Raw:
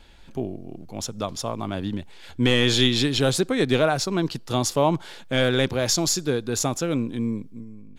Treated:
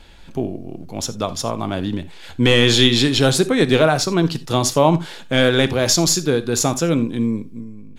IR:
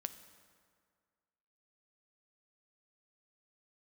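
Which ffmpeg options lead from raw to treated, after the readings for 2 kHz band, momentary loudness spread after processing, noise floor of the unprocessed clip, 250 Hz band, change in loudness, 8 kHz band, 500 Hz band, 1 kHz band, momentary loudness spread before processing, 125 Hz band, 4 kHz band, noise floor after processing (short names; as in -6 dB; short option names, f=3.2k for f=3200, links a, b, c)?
+6.0 dB, 14 LU, -43 dBFS, +6.0 dB, +6.0 dB, +6.0 dB, +6.0 dB, +5.5 dB, 14 LU, +6.0 dB, +6.0 dB, -37 dBFS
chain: -filter_complex "[1:a]atrim=start_sample=2205,atrim=end_sample=3528,asetrate=37926,aresample=44100[a];[0:a][a]afir=irnorm=-1:irlink=0,volume=7.5dB"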